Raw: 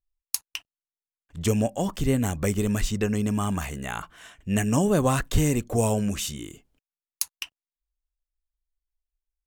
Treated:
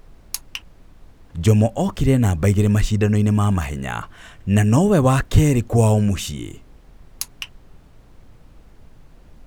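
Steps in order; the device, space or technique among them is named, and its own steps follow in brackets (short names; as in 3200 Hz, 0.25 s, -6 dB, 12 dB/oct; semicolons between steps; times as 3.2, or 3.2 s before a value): car interior (bell 100 Hz +7 dB; high shelf 4900 Hz -7 dB; brown noise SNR 24 dB); gain +5.5 dB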